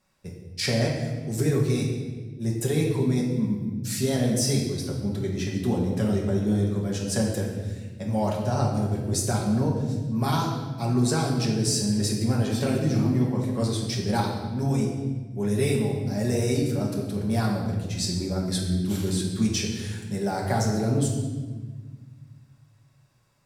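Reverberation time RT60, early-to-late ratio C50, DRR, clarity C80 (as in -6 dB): 1.4 s, 3.0 dB, -3.0 dB, 5.0 dB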